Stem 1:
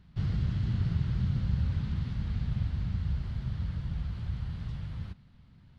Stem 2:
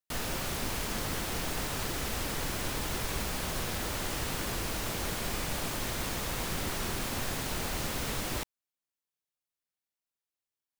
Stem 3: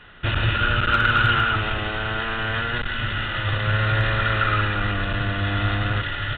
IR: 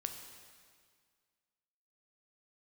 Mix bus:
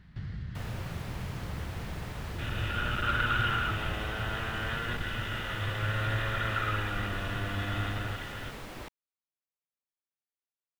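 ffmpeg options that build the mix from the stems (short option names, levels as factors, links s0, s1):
-filter_complex "[0:a]equalizer=f=1800:t=o:w=0.56:g=10,acompressor=threshold=0.00708:ratio=2.5,volume=1.26[s0];[1:a]bass=f=250:g=-2,treble=f=4000:g=-11,adelay=450,volume=0.473[s1];[2:a]dynaudnorm=f=110:g=11:m=1.88,adelay=2150,volume=0.178[s2];[s0][s1][s2]amix=inputs=3:normalize=0"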